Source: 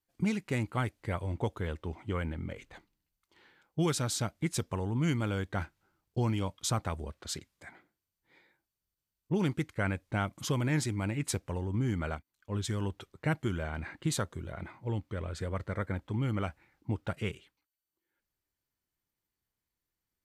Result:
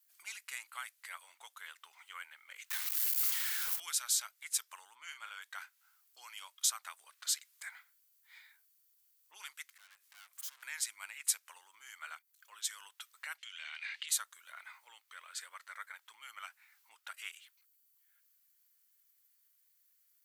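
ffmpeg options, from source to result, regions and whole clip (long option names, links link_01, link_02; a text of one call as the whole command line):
ffmpeg -i in.wav -filter_complex "[0:a]asettb=1/sr,asplit=3[link_01][link_02][link_03];[link_01]atrim=end=2.704[link_04];[link_02]atrim=start=2.7:end=3.8,asetpts=PTS-STARTPTS,afade=type=in:duration=0.004:curve=qsin,afade=type=out:start_time=1.096:duration=0.004:curve=qsin,aeval=exprs='val(0)+0.5*0.0119*sgn(val(0))':channel_layout=same,highpass=600,asplit=2[link_05][link_06];[link_06]adelay=48,volume=-12dB[link_07];[link_05][link_07]amix=inputs=2:normalize=0,atrim=end_sample=48510[link_08];[link_03]atrim=start=3.796[link_09];[link_04][link_08]acrossfade=duration=0.004:curve1=hsin:curve2=qsin[link_10];[link_10][link_09]acrossfade=duration=0.004:curve1=qsin:curve2=hsin,asettb=1/sr,asplit=3[link_11][link_12][link_13];[link_11]atrim=end=4.954[link_14];[link_12]atrim=start=4.95:end=5.42,asetpts=PTS-STARTPTS,afade=type=in:duration=0.004:curve=qsin,afade=type=out:start_time=0.466:duration=0.004:curve=qsin,lowpass=frequency=3100:poles=1,asplit=2[link_15][link_16];[link_16]adelay=40,volume=-9dB[link_17];[link_15][link_17]amix=inputs=2:normalize=0,atrim=end_sample=20727[link_18];[link_13]atrim=start=5.416[link_19];[link_14][link_18]acrossfade=duration=0.004:curve1=hsin:curve2=qsin[link_20];[link_20][link_19]acrossfade=duration=0.004:curve1=qsin:curve2=hsin,asettb=1/sr,asplit=3[link_21][link_22][link_23];[link_21]atrim=end=9.694[link_24];[link_22]atrim=start=9.69:end=10.63,asetpts=PTS-STARTPTS,afade=type=in:duration=0.004:curve=qsin,afade=type=out:start_time=0.936:duration=0.004:curve=qsin,acompressor=threshold=-46dB:ratio=3:attack=3.2:release=140:knee=1:detection=peak,aeval=exprs='(tanh(562*val(0)+0.55)-tanh(0.55))/562':channel_layout=same[link_25];[link_23]atrim=start=10.626[link_26];[link_24][link_25]acrossfade=duration=0.004:curve1=hsin:curve2=qsin[link_27];[link_27][link_26]acrossfade=duration=0.004:curve1=qsin:curve2=hsin,asettb=1/sr,asplit=3[link_28][link_29][link_30];[link_28]atrim=end=13.384[link_31];[link_29]atrim=start=13.38:end=14.09,asetpts=PTS-STARTPTS,afade=type=in:duration=0.004:curve=qsin,afade=type=out:start_time=0.706:duration=0.004:curve=qsin,highshelf=frequency=1900:width_type=q:width=1.5:gain=13,acompressor=threshold=-39dB:ratio=8:attack=3.2:release=140:knee=1:detection=peak,highpass=420,lowpass=4000[link_32];[link_30]atrim=start=14.086[link_33];[link_31][link_32]acrossfade=duration=0.004:curve1=hsin:curve2=qsin[link_34];[link_34][link_33]acrossfade=duration=0.004:curve1=qsin:curve2=hsin,acompressor=threshold=-48dB:ratio=2,highpass=frequency=1200:width=0.5412,highpass=frequency=1200:width=1.3066,aemphasis=mode=production:type=50fm,volume=5.5dB" out.wav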